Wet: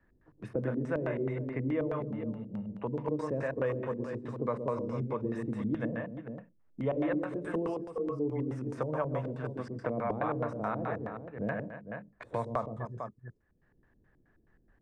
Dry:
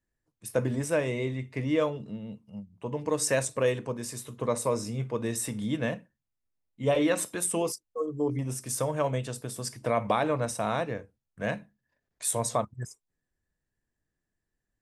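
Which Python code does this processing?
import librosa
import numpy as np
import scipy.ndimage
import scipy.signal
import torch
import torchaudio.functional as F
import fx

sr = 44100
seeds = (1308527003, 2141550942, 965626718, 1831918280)

y = fx.echo_multitap(x, sr, ms=(70, 117, 144, 252, 450), db=(-18.5, -5.0, -12.0, -16.0, -14.5))
y = fx.filter_lfo_lowpass(y, sr, shape='square', hz=4.7, low_hz=360.0, high_hz=1500.0, q=1.5)
y = fx.band_squash(y, sr, depth_pct=70)
y = F.gain(torch.from_numpy(y), -5.5).numpy()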